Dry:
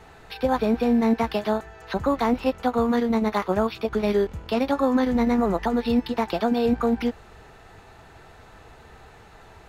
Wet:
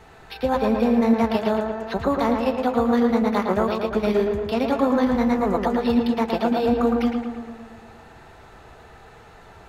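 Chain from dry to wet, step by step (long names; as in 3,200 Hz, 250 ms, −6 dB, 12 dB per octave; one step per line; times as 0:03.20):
tape delay 113 ms, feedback 72%, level −3 dB, low-pass 2,500 Hz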